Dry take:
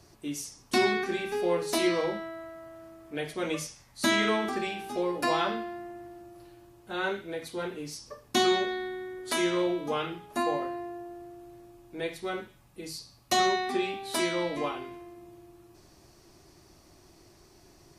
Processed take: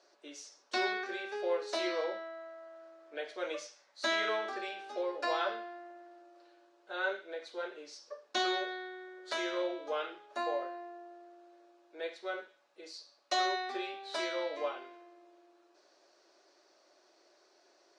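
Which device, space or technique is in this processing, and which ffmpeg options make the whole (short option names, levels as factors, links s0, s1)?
phone speaker on a table: -af "highpass=f=380:w=0.5412,highpass=f=380:w=1.3066,equalizer=f=580:t=q:w=4:g=9,equalizer=f=1500:t=q:w=4:g=7,equalizer=f=4000:t=q:w=4:g=4,lowpass=f=6500:w=0.5412,lowpass=f=6500:w=1.3066,volume=0.398"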